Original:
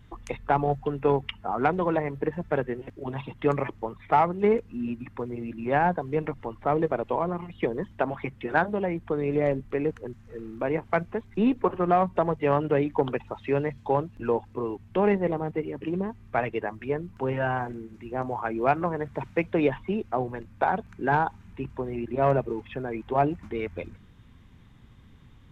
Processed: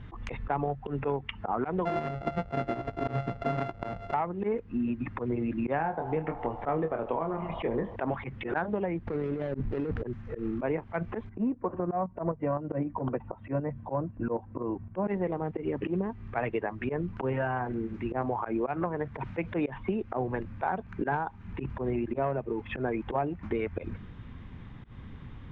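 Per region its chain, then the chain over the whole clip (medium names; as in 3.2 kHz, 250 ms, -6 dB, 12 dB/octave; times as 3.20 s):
1.85–4.14 s: sorted samples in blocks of 64 samples + treble shelf 2.4 kHz -11.5 dB + doubling 16 ms -12.5 dB
5.76–7.96 s: doubling 25 ms -6.5 dB + band-passed feedback delay 78 ms, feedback 85%, band-pass 830 Hz, level -17 dB
9.07–10.02 s: median filter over 41 samples + compressor with a negative ratio -37 dBFS
11.29–15.08 s: low-pass 1.2 kHz + comb of notches 420 Hz + tremolo saw up 3.9 Hz, depth 55%
whole clip: low-pass 2.6 kHz 12 dB/octave; slow attack 116 ms; compression 12:1, threshold -35 dBFS; trim +8.5 dB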